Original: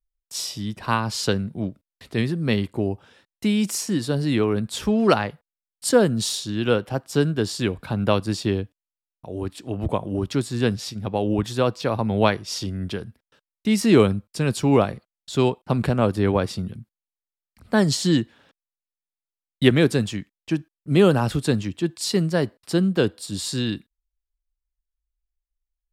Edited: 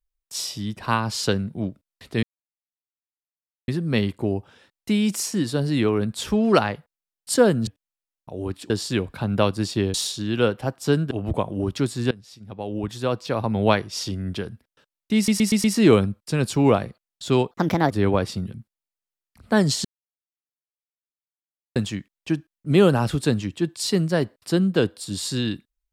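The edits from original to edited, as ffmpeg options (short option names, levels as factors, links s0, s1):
-filter_complex "[0:a]asplit=15[s0][s1][s2][s3][s4][s5][s6][s7][s8][s9][s10][s11][s12][s13][s14];[s0]atrim=end=2.23,asetpts=PTS-STARTPTS,afade=t=out:st=2.226:d=0.004:c=hsin,apad=pad_dur=1.45[s15];[s1]atrim=start=2.23:end=6.222,asetpts=PTS-STARTPTS,afade=t=in:d=0.004:c=hsin[s16];[s2]atrim=start=8.628:end=9.662[s17];[s3]atrim=start=7.388:end=8.632[s18];[s4]atrim=start=6.218:end=7.392[s19];[s5]atrim=start=9.658:end=10.66,asetpts=PTS-STARTPTS,afade=t=out:st=0.998:d=0.004:c=hsin:silence=0.0707946[s20];[s6]atrim=start=10.66:end=13.832,asetpts=PTS-STARTPTS,afade=t=in:d=1.45:silence=0.0707946[s21];[s7]atrim=start=13.708:end=13.832[s22];[s8]atrim=start=13.708:end=13.832[s23];[s9]atrim=start=13.708:end=13.832[s24];[s10]atrim=start=13.708:end=15.584[s25];[s11]atrim=start=15.58:end=16.12,asetpts=PTS-STARTPTS,asetrate=59976,aresample=44100,atrim=end_sample=17510,asetpts=PTS-STARTPTS[s26];[s12]atrim=start=16.116:end=18.06,asetpts=PTS-STARTPTS,afade=t=out:st=1.94:d=0.004:c=hsin[s27];[s13]atrim=start=18.06:end=19.97,asetpts=PTS-STARTPTS,volume=0[s28];[s14]atrim=start=19.97,asetpts=PTS-STARTPTS,afade=t=in:d=0.004:c=hsin[s29];[s15][s16]concat=n=2:v=0:a=1[s30];[s30][s17]acrossfade=d=0.004:c1=hsin:c2=hsin[s31];[s31][s18]acrossfade=d=0.004:c1=hsin:c2=hsin[s32];[s32][s19]acrossfade=d=0.004:c1=hsin:c2=hsin[s33];[s20][s21]concat=n=2:v=0:a=1[s34];[s33][s34]acrossfade=d=0.004:c1=hsin:c2=hsin[s35];[s35][s22]acrossfade=d=0.004:c1=hsin:c2=hsin[s36];[s36][s23]acrossfade=d=0.004:c1=hsin:c2=hsin[s37];[s37][s24]acrossfade=d=0.004:c1=hsin:c2=hsin[s38];[s38][s25]acrossfade=d=0.004:c1=hsin:c2=hsin[s39];[s39][s26]acrossfade=d=0.004:c1=hsin:c2=hsin[s40];[s27][s28][s29]concat=n=3:v=0:a=1[s41];[s40][s41]acrossfade=d=0.004:c1=hsin:c2=hsin"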